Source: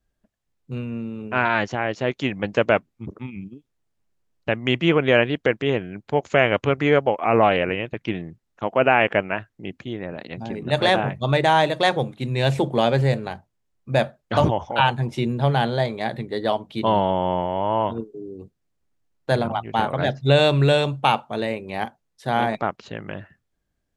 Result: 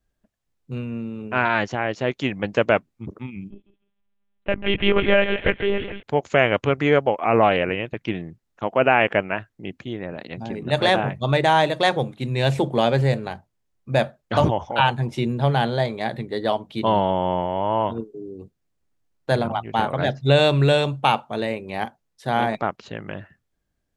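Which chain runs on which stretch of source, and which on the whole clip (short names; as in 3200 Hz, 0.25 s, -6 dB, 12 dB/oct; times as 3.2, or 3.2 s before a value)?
3.5–6.03 thinning echo 0.15 s, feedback 38%, high-pass 1000 Hz, level -6 dB + monotone LPC vocoder at 8 kHz 200 Hz
whole clip: dry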